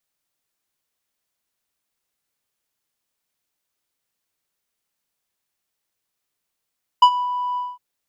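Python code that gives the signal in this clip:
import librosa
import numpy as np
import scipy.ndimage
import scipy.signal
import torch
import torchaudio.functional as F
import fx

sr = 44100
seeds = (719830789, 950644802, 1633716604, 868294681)

y = fx.sub_voice(sr, note=83, wave='square', cutoff_hz=1000.0, q=0.8, env_oct=1.5, env_s=0.25, attack_ms=7.4, decay_s=0.07, sustain_db=-14.5, release_s=0.21, note_s=0.55, slope=12)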